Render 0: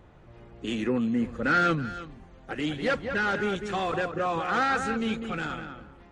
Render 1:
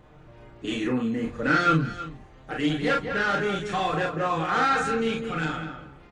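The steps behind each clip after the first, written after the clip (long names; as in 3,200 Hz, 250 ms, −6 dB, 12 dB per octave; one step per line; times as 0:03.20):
floating-point word with a short mantissa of 8 bits
comb filter 6.6 ms, depth 49%
ambience of single reflections 31 ms −4.5 dB, 44 ms −5 dB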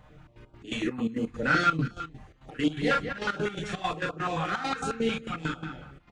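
gate pattern "xxx.x.x.xx.x.x.x" 168 BPM −12 dB
notch on a step sequencer 11 Hz 350–1,900 Hz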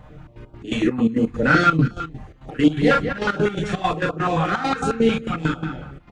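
tilt shelving filter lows +3.5 dB, about 1,200 Hz
level +7.5 dB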